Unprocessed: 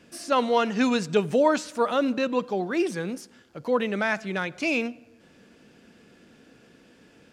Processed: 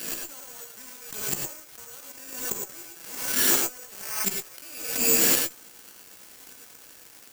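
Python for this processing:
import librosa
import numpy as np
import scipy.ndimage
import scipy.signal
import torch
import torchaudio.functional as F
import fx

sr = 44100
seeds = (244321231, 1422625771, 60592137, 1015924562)

y = fx.recorder_agc(x, sr, target_db=-14.0, rise_db_per_s=44.0, max_gain_db=30)
y = scipy.signal.sosfilt(scipy.signal.butter(4, 180.0, 'highpass', fs=sr, output='sos'), y)
y = fx.high_shelf(y, sr, hz=2400.0, db=11.5)
y = fx.gate_flip(y, sr, shuts_db=-16.0, range_db=-41)
y = y + 10.0 ** (-63.0 / 20.0) * np.sin(2.0 * np.pi * 1500.0 * np.arange(len(y)) / sr)
y = fx.quant_companded(y, sr, bits=4)
y = fx.fuzz(y, sr, gain_db=46.0, gate_db=-50.0)
y = fx.doubler(y, sr, ms=15.0, db=-11.0)
y = fx.rev_gated(y, sr, seeds[0], gate_ms=130, shape='rising', drr_db=1.0)
y = (np.kron(scipy.signal.resample_poly(y, 1, 6), np.eye(6)[0]) * 6)[:len(y)]
y = fx.pre_swell(y, sr, db_per_s=60.0)
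y = y * librosa.db_to_amplitude(-14.0)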